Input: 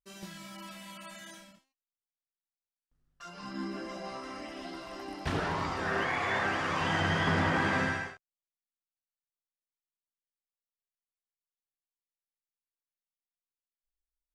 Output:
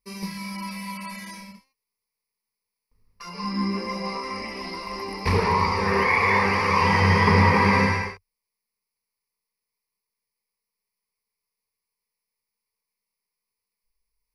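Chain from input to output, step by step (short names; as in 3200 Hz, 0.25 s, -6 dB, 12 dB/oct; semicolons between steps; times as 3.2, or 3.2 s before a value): ripple EQ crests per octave 0.87, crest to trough 17 dB; gain +7 dB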